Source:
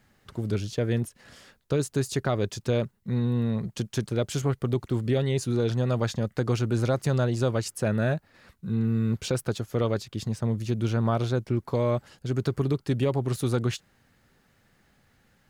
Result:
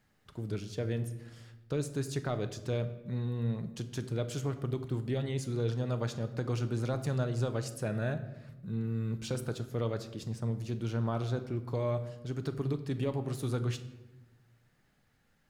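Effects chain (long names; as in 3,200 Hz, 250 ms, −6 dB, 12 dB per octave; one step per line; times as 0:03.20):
rectangular room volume 450 cubic metres, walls mixed, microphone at 0.46 metres
level −8.5 dB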